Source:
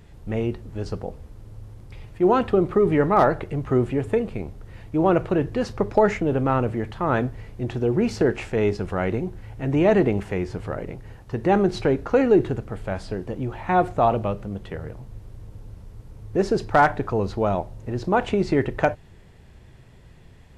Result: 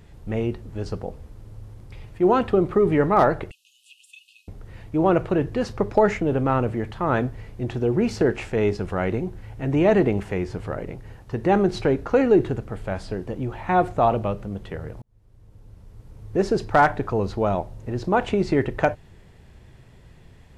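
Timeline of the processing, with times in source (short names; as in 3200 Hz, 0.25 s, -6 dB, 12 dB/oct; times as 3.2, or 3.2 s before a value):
3.51–4.48 brick-wall FIR high-pass 2500 Hz
15.02–16.37 fade in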